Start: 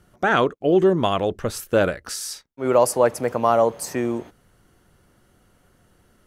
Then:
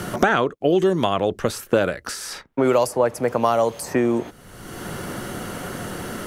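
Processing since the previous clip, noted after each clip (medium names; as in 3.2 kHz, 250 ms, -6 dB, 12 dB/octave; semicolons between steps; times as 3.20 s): three bands compressed up and down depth 100%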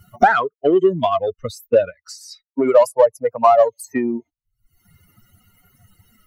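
expander on every frequency bin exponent 3; peaking EQ 720 Hz +14 dB 2.2 oct; in parallel at -7 dB: saturation -15.5 dBFS, distortion -7 dB; on the sum: trim -2.5 dB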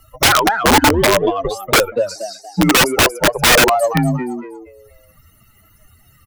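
frequency-shifting echo 236 ms, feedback 32%, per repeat +93 Hz, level -8 dB; frequency shift -88 Hz; integer overflow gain 10 dB; trim +4.5 dB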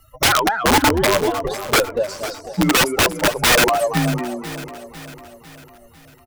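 feedback delay 500 ms, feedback 52%, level -14.5 dB; trim -3.5 dB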